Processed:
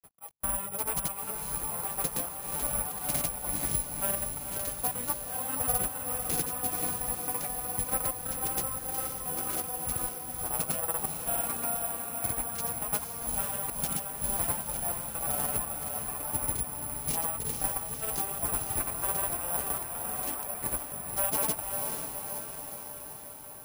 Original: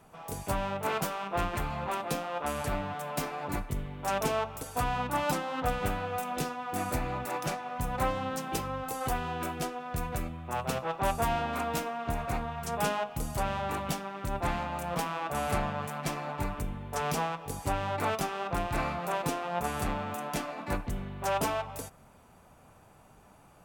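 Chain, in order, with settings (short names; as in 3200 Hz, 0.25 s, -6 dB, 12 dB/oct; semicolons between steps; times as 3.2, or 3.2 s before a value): reverb removal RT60 0.84 s; in parallel at 0 dB: compressor, threshold -41 dBFS, peak gain reduction 16 dB; on the sum: step gate "x.xx...xxxxxx" 200 bpm -60 dB; grains, pitch spread up and down by 0 st; on a send: diffused feedback echo 0.496 s, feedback 65%, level -5 dB; on the sum: careless resampling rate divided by 4×, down none, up zero stuff; gain -6 dB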